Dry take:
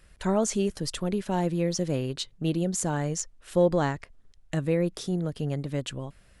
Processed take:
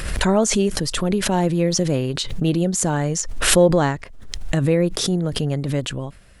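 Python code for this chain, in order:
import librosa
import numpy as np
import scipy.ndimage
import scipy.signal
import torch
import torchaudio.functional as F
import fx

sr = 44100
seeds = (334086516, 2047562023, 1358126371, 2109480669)

y = fx.pre_swell(x, sr, db_per_s=44.0)
y = F.gain(torch.from_numpy(y), 7.0).numpy()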